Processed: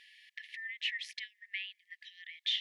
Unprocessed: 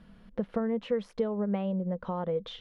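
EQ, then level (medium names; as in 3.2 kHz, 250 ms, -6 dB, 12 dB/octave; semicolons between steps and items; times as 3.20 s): brick-wall FIR high-pass 1.7 kHz; low-pass 3.8 kHz 6 dB/octave; +14.5 dB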